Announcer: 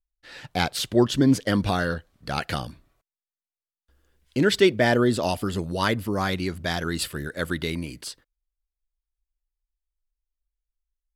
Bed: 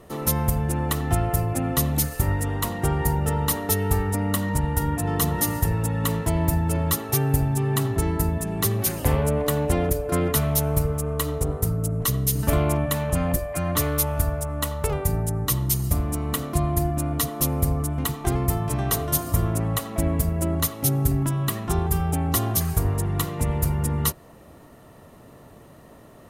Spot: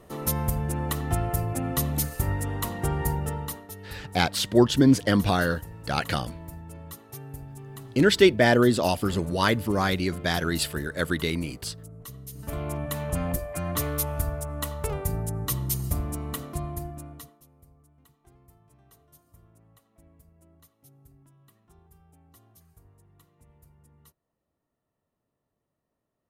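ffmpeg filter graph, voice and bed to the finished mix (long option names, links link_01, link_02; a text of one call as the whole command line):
ffmpeg -i stem1.wav -i stem2.wav -filter_complex "[0:a]adelay=3600,volume=1dB[link_01];[1:a]volume=10dB,afade=type=out:start_time=3.1:duration=0.58:silence=0.177828,afade=type=in:start_time=12.31:duration=0.8:silence=0.199526,afade=type=out:start_time=16.03:duration=1.38:silence=0.0334965[link_02];[link_01][link_02]amix=inputs=2:normalize=0" out.wav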